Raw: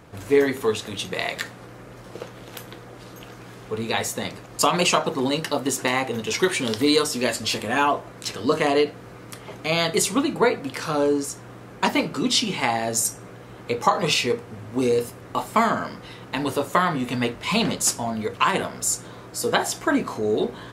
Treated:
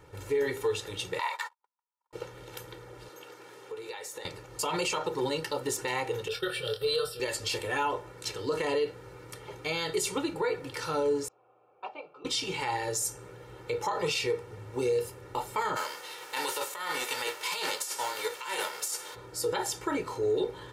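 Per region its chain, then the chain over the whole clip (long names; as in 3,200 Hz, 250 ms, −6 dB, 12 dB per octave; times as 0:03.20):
0:01.19–0:02.13: high-pass with resonance 960 Hz, resonance Q 9.3 + noise gate −33 dBFS, range −56 dB
0:03.08–0:04.25: high-pass filter 300 Hz + downward compressor 5 to 1, threshold −32 dBFS
0:06.28–0:07.20: downward expander −26 dBFS + phaser with its sweep stopped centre 1,400 Hz, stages 8 + double-tracking delay 25 ms −8 dB
0:11.28–0:12.25: formant filter a + high-frequency loss of the air 140 metres + one half of a high-frequency compander decoder only
0:15.75–0:19.14: spectral envelope flattened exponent 0.6 + high-pass filter 520 Hz + compressor whose output falls as the input rises −28 dBFS
whole clip: comb filter 2.2 ms, depth 97%; brickwall limiter −12 dBFS; level −8.5 dB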